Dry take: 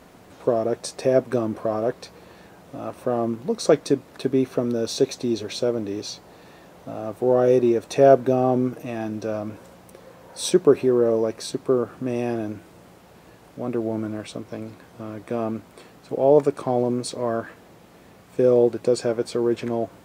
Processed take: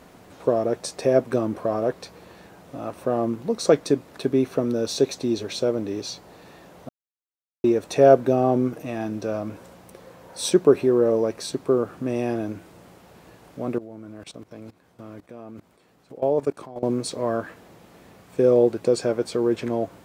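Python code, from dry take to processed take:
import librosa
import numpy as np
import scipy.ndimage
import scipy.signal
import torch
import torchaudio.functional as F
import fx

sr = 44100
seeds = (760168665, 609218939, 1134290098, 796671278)

y = fx.level_steps(x, sr, step_db=20, at=(13.78, 16.83))
y = fx.edit(y, sr, fx.silence(start_s=6.89, length_s=0.75), tone=tone)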